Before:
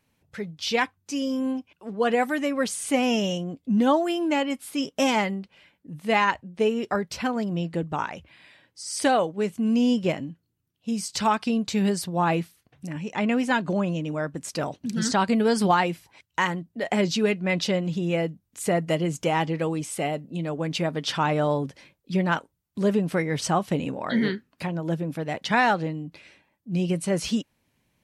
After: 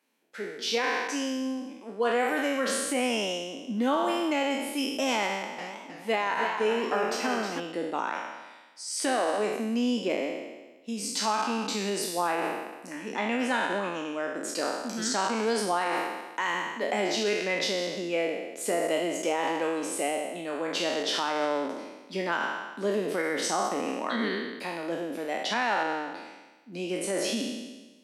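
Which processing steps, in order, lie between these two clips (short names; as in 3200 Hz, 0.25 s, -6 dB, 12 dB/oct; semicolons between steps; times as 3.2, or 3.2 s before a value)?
spectral trails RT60 1.22 s; limiter -13.5 dBFS, peak gain reduction 8.5 dB; steep high-pass 230 Hz 36 dB/oct; 5.27–7.6 warbling echo 0.316 s, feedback 38%, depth 131 cents, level -7 dB; gain -4 dB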